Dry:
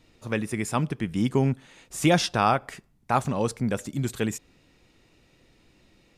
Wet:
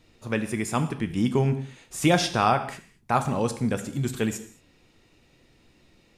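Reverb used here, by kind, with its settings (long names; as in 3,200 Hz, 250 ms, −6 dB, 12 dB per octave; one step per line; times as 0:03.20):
reverb whose tail is shaped and stops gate 250 ms falling, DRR 8.5 dB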